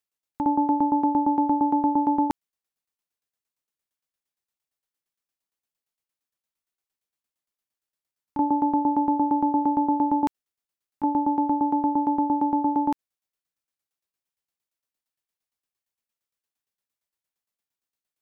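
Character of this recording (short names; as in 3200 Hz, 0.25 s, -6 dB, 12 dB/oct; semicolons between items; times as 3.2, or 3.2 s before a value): tremolo saw down 8.7 Hz, depth 80%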